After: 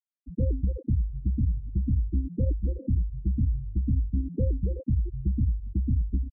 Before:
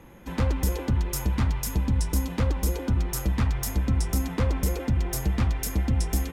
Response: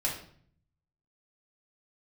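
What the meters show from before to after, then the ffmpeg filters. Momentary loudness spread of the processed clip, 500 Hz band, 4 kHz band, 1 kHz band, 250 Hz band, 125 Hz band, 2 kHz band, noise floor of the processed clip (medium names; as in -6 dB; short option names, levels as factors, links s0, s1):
3 LU, -5.5 dB, under -40 dB, under -40 dB, -2.5 dB, -1.0 dB, under -40 dB, -61 dBFS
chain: -af "aecho=1:1:465|930|1395:0.1|0.035|0.0123,afftfilt=real='re*gte(hypot(re,im),0.158)':imag='im*gte(hypot(re,im),0.158)':win_size=1024:overlap=0.75,volume=0.891"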